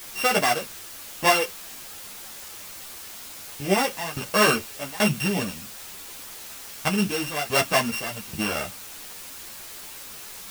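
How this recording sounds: a buzz of ramps at a fixed pitch in blocks of 16 samples; tremolo saw down 1.2 Hz, depth 95%; a quantiser's noise floor 8-bit, dither triangular; a shimmering, thickened sound

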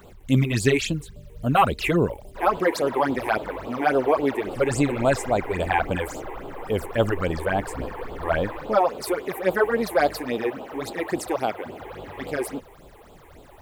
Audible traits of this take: a quantiser's noise floor 10-bit, dither none; phasing stages 8, 3.6 Hz, lowest notch 170–1900 Hz

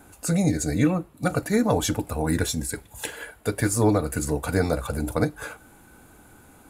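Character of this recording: noise floor -53 dBFS; spectral tilt -5.5 dB/oct

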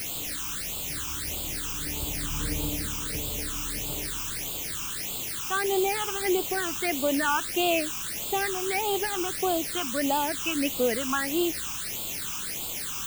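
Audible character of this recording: a quantiser's noise floor 6-bit, dither triangular; phasing stages 8, 1.6 Hz, lowest notch 560–1800 Hz

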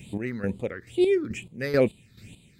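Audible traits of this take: chopped level 2.3 Hz, depth 65%, duty 40%; phasing stages 6, 2.2 Hz, lowest notch 730–1600 Hz

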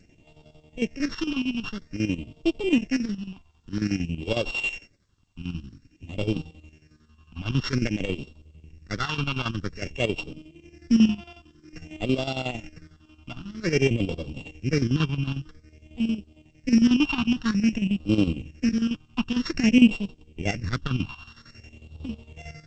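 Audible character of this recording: a buzz of ramps at a fixed pitch in blocks of 16 samples; phasing stages 6, 0.51 Hz, lowest notch 500–1800 Hz; chopped level 11 Hz, depth 65%, duty 60%; G.722

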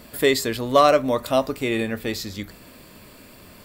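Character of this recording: noise floor -47 dBFS; spectral tilt -4.5 dB/oct

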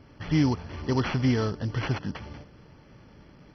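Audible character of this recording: aliases and images of a low sample rate 5200 Hz, jitter 20%; MP2

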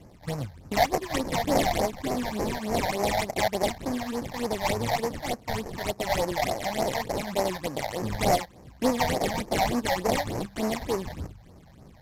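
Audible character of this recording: aliases and images of a low sample rate 1400 Hz, jitter 20%; phasing stages 8, 3.4 Hz, lowest notch 340–3500 Hz; Vorbis

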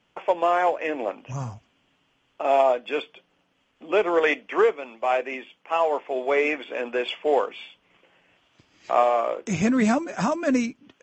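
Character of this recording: noise floor -68 dBFS; spectral tilt -4.0 dB/oct

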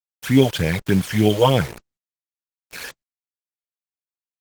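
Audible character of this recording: phasing stages 12, 3.4 Hz, lowest notch 210–1400 Hz; a quantiser's noise floor 6-bit, dither none; Opus

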